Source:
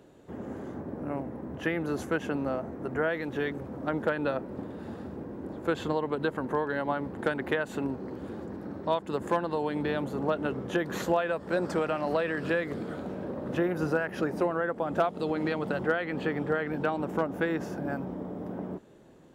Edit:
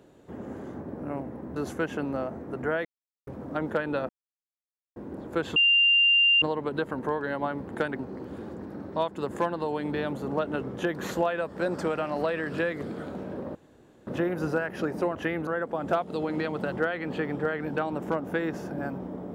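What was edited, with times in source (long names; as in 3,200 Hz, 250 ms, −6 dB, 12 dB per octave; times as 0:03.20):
0:01.56–0:01.88: move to 0:14.54
0:03.17–0:03.59: silence
0:04.41–0:05.28: silence
0:05.88: insert tone 2,790 Hz −17 dBFS 0.86 s
0:07.45–0:07.90: remove
0:13.46: splice in room tone 0.52 s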